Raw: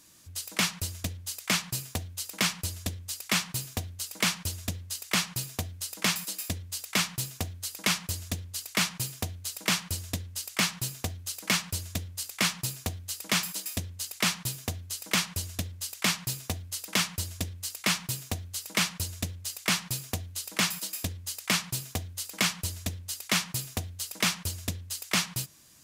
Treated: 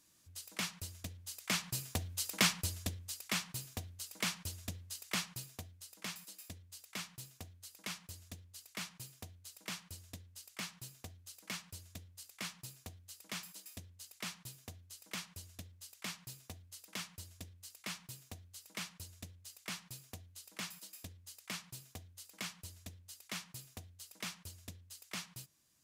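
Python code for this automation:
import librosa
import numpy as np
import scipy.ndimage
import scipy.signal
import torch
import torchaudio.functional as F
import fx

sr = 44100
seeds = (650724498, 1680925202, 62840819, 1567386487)

y = fx.gain(x, sr, db=fx.line((1.09, -12.0), (2.29, -1.5), (3.4, -10.0), (5.15, -10.0), (5.82, -17.0)))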